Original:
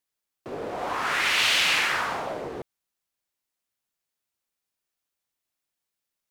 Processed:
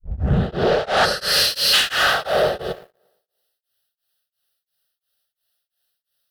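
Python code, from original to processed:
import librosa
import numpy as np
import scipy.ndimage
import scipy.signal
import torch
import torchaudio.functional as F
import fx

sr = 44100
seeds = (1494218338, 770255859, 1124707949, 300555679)

y = fx.tape_start_head(x, sr, length_s=1.65)
y = fx.highpass(y, sr, hz=56.0, slope=6)
y = fx.fixed_phaser(y, sr, hz=1500.0, stages=8)
y = fx.rev_gated(y, sr, seeds[0], gate_ms=120, shape='rising', drr_db=2.0)
y = fx.spec_box(y, sr, start_s=1.05, length_s=0.69, low_hz=620.0, high_hz=4000.0, gain_db=-14)
y = fx.fold_sine(y, sr, drive_db=7, ceiling_db=-12.0)
y = fx.echo_tape(y, sr, ms=114, feedback_pct=53, wet_db=-18.0, lp_hz=4500.0, drive_db=15.0, wow_cents=18)
y = fx.rider(y, sr, range_db=10, speed_s=0.5)
y = fx.high_shelf(y, sr, hz=2800.0, db=11.5)
y = fx.leveller(y, sr, passes=2)
y = fx.high_shelf(y, sr, hz=9200.0, db=-6.0)
y = y * np.abs(np.cos(np.pi * 2.9 * np.arange(len(y)) / sr))
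y = F.gain(torch.from_numpy(y), -4.0).numpy()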